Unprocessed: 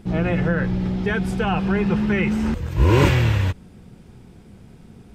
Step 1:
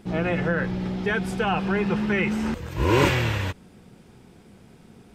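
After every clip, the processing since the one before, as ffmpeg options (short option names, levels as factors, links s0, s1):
-af "lowshelf=f=160:g=-11.5"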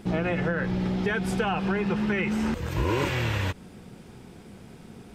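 -af "acompressor=threshold=0.0447:ratio=6,volume=1.58"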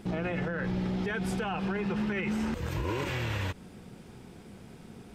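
-af "alimiter=limit=0.0891:level=0:latency=1:release=46,volume=0.75"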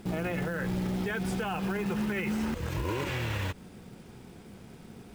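-af "acrusher=bits=5:mode=log:mix=0:aa=0.000001"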